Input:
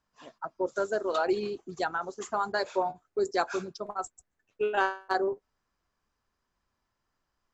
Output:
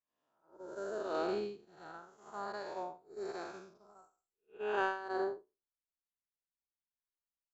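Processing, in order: time blur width 0.233 s; upward expander 2.5:1, over -49 dBFS

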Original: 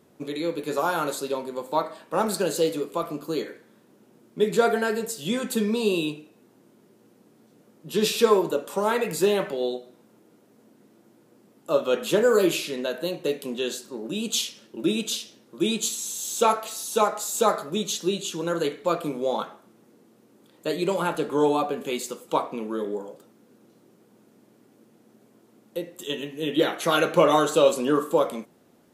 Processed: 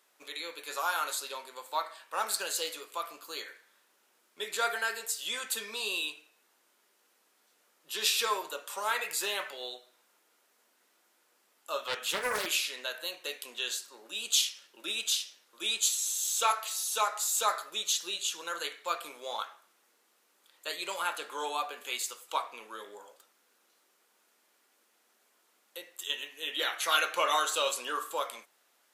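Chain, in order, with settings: HPF 1300 Hz 12 dB/oct; 11.87–12.46 Doppler distortion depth 0.31 ms

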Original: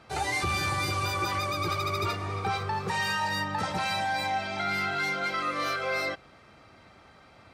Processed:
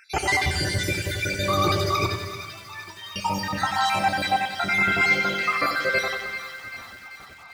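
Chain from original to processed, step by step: random spectral dropouts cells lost 61%; 2.06–3.16 metallic resonator 320 Hz, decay 0.28 s, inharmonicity 0.008; thin delay 0.389 s, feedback 61%, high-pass 1400 Hz, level -10.5 dB; on a send at -10.5 dB: reverb RT60 1.5 s, pre-delay 3 ms; on the sum: lo-fi delay 92 ms, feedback 55%, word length 9-bit, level -7 dB; gain +8.5 dB

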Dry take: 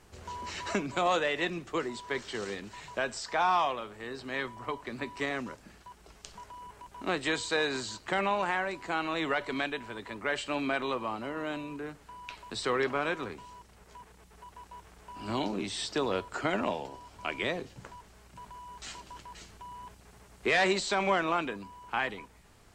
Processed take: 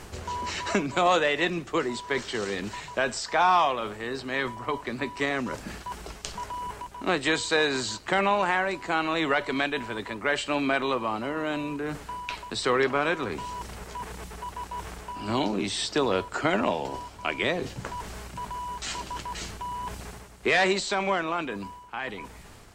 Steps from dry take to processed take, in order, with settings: ending faded out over 2.73 s; reverse; upward compressor, threshold -32 dBFS; reverse; gain +5.5 dB

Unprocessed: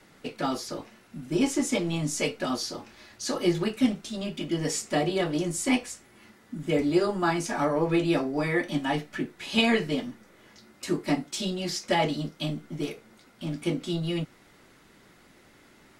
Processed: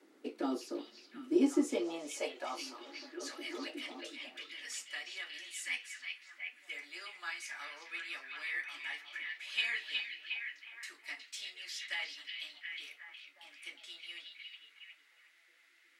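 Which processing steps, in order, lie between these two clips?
ladder high-pass 220 Hz, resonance 40%; high-pass sweep 320 Hz -> 2000 Hz, 1.56–3.4; delay with a stepping band-pass 0.363 s, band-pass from 3400 Hz, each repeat -0.7 oct, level -2 dB; gain -4.5 dB

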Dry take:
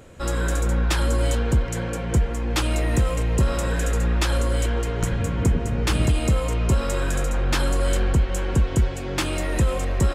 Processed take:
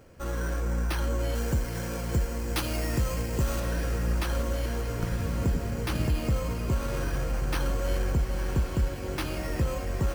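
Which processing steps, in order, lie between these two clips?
careless resampling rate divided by 6×, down filtered, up hold; 1.35–3.6 high shelf 3500 Hz +7.5 dB; diffused feedback echo 1.05 s, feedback 66%, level -10 dB; gain -7 dB

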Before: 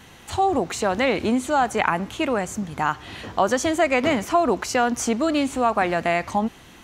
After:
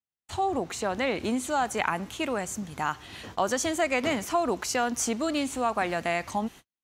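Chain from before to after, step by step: gate -37 dBFS, range -50 dB; high shelf 3800 Hz +2 dB, from 1.24 s +8 dB; gain -7 dB

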